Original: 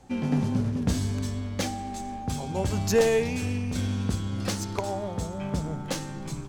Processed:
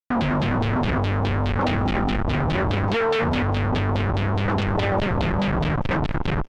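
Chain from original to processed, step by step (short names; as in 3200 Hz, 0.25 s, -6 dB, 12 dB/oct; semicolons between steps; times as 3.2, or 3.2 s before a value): Schmitt trigger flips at -31.5 dBFS; LFO low-pass saw down 4.8 Hz 780–3900 Hz; speakerphone echo 0.19 s, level -18 dB; gain +6 dB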